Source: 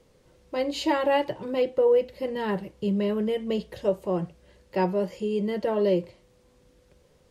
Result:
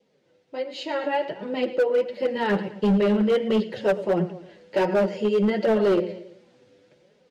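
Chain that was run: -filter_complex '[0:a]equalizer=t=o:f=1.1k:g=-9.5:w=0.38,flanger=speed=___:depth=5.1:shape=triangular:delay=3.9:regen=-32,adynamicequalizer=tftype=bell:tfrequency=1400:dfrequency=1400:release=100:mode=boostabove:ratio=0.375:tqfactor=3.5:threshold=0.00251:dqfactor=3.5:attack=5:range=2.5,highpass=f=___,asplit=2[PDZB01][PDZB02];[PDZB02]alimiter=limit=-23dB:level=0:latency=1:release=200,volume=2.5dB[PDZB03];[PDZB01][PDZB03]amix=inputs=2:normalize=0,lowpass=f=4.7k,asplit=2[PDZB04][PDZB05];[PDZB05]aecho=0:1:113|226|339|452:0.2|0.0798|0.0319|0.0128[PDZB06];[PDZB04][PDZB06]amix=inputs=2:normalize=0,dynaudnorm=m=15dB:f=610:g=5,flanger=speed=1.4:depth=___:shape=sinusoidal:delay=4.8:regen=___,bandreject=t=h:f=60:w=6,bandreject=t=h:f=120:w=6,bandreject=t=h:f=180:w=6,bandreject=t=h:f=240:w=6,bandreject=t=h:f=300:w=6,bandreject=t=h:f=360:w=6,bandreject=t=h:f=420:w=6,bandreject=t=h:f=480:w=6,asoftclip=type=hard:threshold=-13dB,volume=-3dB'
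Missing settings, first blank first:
0.69, 190, 5.4, 33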